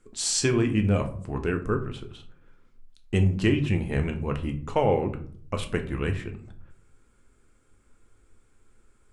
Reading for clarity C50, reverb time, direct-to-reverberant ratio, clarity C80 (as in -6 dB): 13.0 dB, 0.55 s, 5.0 dB, 17.0 dB